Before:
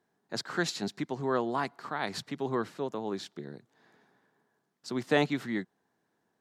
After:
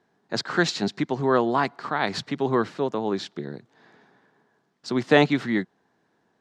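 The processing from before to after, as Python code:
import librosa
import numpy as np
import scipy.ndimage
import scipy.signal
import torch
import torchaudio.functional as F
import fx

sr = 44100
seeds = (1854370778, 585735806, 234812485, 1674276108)

y = scipy.signal.sosfilt(scipy.signal.butter(2, 5700.0, 'lowpass', fs=sr, output='sos'), x)
y = y * 10.0 ** (8.5 / 20.0)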